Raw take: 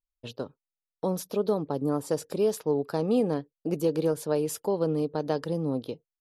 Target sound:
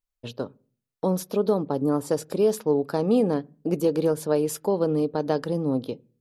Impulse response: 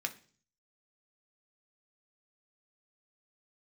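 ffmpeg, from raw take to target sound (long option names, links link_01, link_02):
-filter_complex "[0:a]asplit=2[link_01][link_02];[1:a]atrim=start_sample=2205,lowpass=2300,lowshelf=frequency=220:gain=11.5[link_03];[link_02][link_03]afir=irnorm=-1:irlink=0,volume=-15dB[link_04];[link_01][link_04]amix=inputs=2:normalize=0,volume=2.5dB"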